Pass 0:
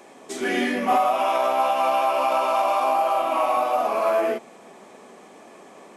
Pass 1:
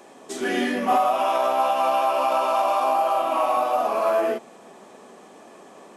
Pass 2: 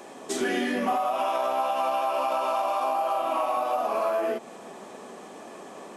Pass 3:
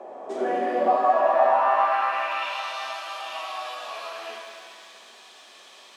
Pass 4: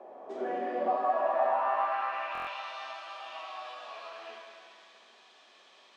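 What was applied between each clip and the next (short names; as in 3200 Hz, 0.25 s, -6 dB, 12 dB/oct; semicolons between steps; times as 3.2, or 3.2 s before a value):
bell 2200 Hz -6.5 dB 0.22 oct
compressor 6:1, threshold -27 dBFS, peak gain reduction 11 dB; gain +3.5 dB
band-pass sweep 630 Hz -> 3700 Hz, 1.31–2.64; shimmer reverb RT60 2.3 s, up +7 st, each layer -8 dB, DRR 1 dB; gain +7.5 dB
air absorption 100 m; stuck buffer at 2.33, samples 1024, times 5; gain -8 dB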